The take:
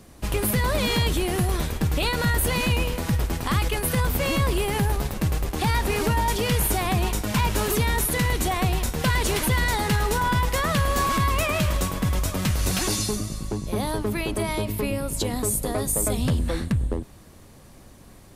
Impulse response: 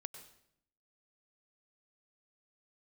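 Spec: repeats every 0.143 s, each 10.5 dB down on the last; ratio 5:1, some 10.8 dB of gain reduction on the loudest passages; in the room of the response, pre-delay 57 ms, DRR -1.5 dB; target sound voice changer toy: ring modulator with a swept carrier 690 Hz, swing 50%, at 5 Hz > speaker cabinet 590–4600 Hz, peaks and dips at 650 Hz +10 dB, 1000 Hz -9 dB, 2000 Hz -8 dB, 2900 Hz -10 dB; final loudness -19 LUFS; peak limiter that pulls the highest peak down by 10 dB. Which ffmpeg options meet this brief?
-filter_complex "[0:a]acompressor=threshold=-31dB:ratio=5,alimiter=level_in=3dB:limit=-24dB:level=0:latency=1,volume=-3dB,aecho=1:1:143|286|429:0.299|0.0896|0.0269,asplit=2[a][b];[1:a]atrim=start_sample=2205,adelay=57[c];[b][c]afir=irnorm=-1:irlink=0,volume=5.5dB[d];[a][d]amix=inputs=2:normalize=0,aeval=exprs='val(0)*sin(2*PI*690*n/s+690*0.5/5*sin(2*PI*5*n/s))':c=same,highpass=590,equalizer=f=650:t=q:w=4:g=10,equalizer=f=1k:t=q:w=4:g=-9,equalizer=f=2k:t=q:w=4:g=-8,equalizer=f=2.9k:t=q:w=4:g=-10,lowpass=f=4.6k:w=0.5412,lowpass=f=4.6k:w=1.3066,volume=16.5dB"

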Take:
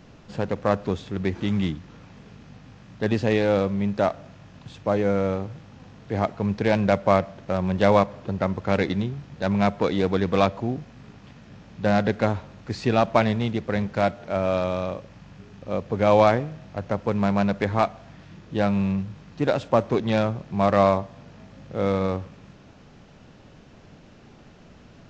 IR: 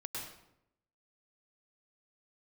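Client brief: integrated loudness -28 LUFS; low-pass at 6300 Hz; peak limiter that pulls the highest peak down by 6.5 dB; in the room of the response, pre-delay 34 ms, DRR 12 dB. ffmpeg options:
-filter_complex "[0:a]lowpass=6.3k,alimiter=limit=-11dB:level=0:latency=1,asplit=2[a][b];[1:a]atrim=start_sample=2205,adelay=34[c];[b][c]afir=irnorm=-1:irlink=0,volume=-12dB[d];[a][d]amix=inputs=2:normalize=0,volume=-2.5dB"

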